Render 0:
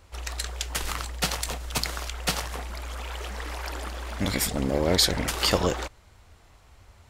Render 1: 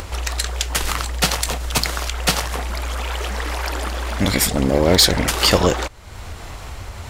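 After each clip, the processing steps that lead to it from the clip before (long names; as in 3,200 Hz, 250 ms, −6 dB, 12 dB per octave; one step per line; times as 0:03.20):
upward compression, threshold −28 dBFS
hard clipping −13.5 dBFS, distortion −23 dB
level +8.5 dB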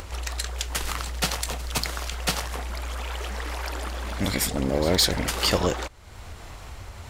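echo ahead of the sound 165 ms −18 dB
level −7.5 dB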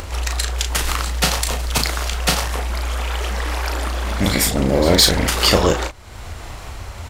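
double-tracking delay 36 ms −6 dB
level +7 dB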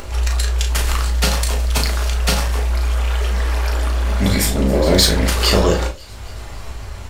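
delay with a high-pass on its return 273 ms, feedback 64%, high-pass 2,900 Hz, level −20.5 dB
on a send at −3 dB: convolution reverb, pre-delay 4 ms
on the sum: level −3 dB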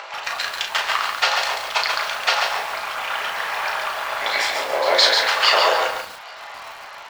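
high-pass filter 720 Hz 24 dB per octave
high-frequency loss of the air 200 metres
feedback echo at a low word length 139 ms, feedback 35%, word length 7 bits, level −4 dB
level +6.5 dB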